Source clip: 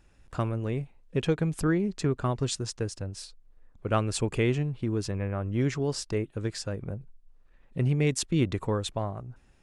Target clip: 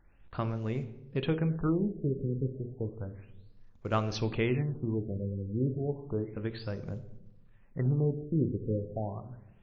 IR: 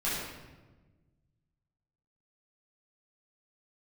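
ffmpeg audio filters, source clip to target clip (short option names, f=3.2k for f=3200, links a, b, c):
-filter_complex "[0:a]acrusher=bits=8:mode=log:mix=0:aa=0.000001,bandreject=f=60:t=h:w=6,bandreject=f=120:t=h:w=6,bandreject=f=180:t=h:w=6,bandreject=f=240:t=h:w=6,bandreject=f=300:t=h:w=6,bandreject=f=360:t=h:w=6,bandreject=f=420:t=h:w=6,bandreject=f=480:t=h:w=6,bandreject=f=540:t=h:w=6,bandreject=f=600:t=h:w=6,asplit=2[a][b];[1:a]atrim=start_sample=2205,asetrate=66150,aresample=44100[c];[b][c]afir=irnorm=-1:irlink=0,volume=-15.5dB[d];[a][d]amix=inputs=2:normalize=0,afftfilt=real='re*lt(b*sr/1024,540*pow(7400/540,0.5+0.5*sin(2*PI*0.32*pts/sr)))':imag='im*lt(b*sr/1024,540*pow(7400/540,0.5+0.5*sin(2*PI*0.32*pts/sr)))':win_size=1024:overlap=0.75,volume=-3.5dB"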